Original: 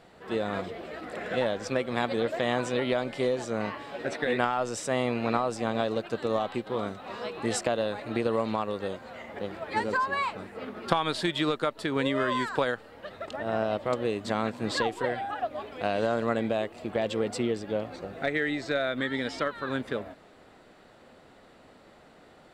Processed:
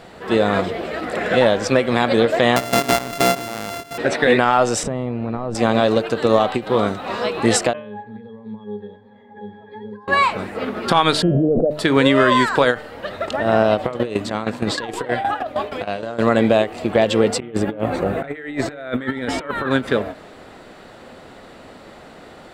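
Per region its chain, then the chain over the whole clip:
2.56–3.98 s: sorted samples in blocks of 64 samples + level held to a coarse grid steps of 14 dB
4.83–5.55 s: tilt EQ -4 dB/octave + compression 12:1, threshold -33 dBFS
7.73–10.08 s: high-pass 150 Hz + compression, threshold -30 dBFS + pitch-class resonator G#, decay 0.25 s
11.22–11.71 s: rippled Chebyshev low-pass 730 Hz, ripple 6 dB + level flattener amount 100%
13.84–16.23 s: compressor with a negative ratio -31 dBFS, ratio -0.5 + tremolo saw down 6.4 Hz, depth 80%
17.40–19.71 s: peaking EQ 5 kHz -12.5 dB 1.1 oct + compressor with a negative ratio -36 dBFS, ratio -0.5
whole clip: de-hum 150.8 Hz, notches 21; loudness maximiser +14.5 dB; endings held to a fixed fall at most 250 dB/s; trim -1 dB

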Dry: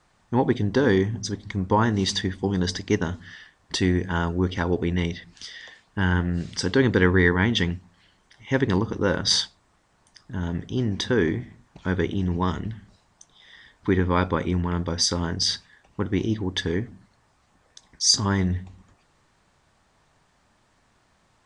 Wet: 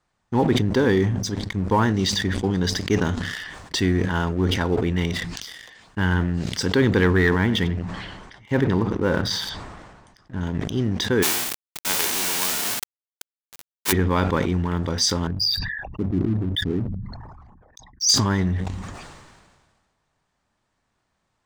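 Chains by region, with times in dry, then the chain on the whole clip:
7.38–10.41 s: low-pass 2.1 kHz 6 dB/octave + delay 91 ms -16 dB
11.22–13.91 s: formants flattened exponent 0.1 + high-pass 210 Hz + companded quantiser 2-bit
15.27–18.09 s: resonances exaggerated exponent 3 + hum notches 50/100/150/200 Hz
whole clip: waveshaping leveller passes 2; decay stretcher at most 36 dB/s; trim -6.5 dB

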